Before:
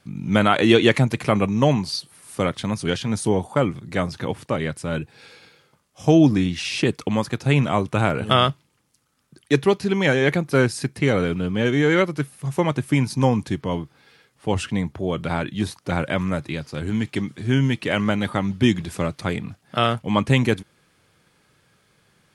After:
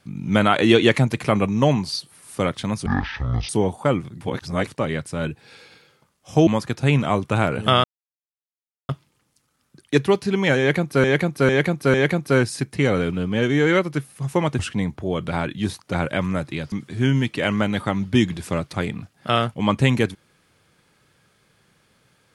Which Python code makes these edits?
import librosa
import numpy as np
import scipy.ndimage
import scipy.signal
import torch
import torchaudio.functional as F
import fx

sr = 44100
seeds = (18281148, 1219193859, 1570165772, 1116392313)

y = fx.edit(x, sr, fx.speed_span(start_s=2.86, length_s=0.34, speed=0.54),
    fx.reverse_span(start_s=3.92, length_s=0.46),
    fx.cut(start_s=6.18, length_s=0.92),
    fx.insert_silence(at_s=8.47, length_s=1.05),
    fx.repeat(start_s=10.17, length_s=0.45, count=4),
    fx.cut(start_s=12.82, length_s=1.74),
    fx.cut(start_s=16.69, length_s=0.51), tone=tone)